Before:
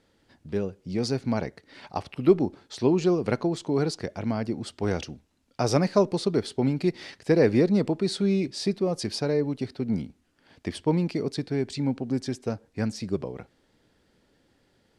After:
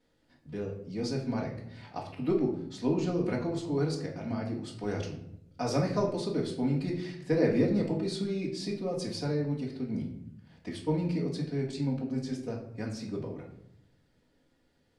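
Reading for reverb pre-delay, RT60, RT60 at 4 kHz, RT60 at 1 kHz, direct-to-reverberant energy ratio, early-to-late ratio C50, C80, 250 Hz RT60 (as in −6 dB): 4 ms, 0.75 s, 0.45 s, 0.70 s, −9.0 dB, 7.0 dB, 10.0 dB, 1.1 s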